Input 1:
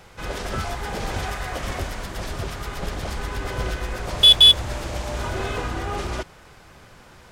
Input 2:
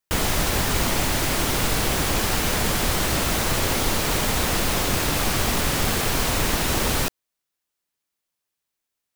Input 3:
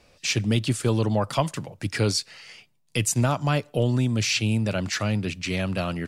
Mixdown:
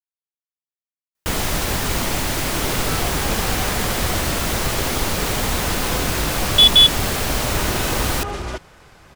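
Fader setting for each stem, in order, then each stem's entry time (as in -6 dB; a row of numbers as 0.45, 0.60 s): +0.5 dB, +0.5 dB, off; 2.35 s, 1.15 s, off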